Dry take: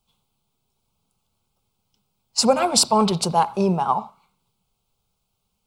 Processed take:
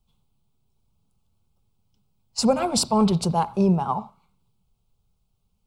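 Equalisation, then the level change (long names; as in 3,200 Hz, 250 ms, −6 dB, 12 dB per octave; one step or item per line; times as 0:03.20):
low-shelf EQ 90 Hz +6 dB
low-shelf EQ 350 Hz +10 dB
−6.5 dB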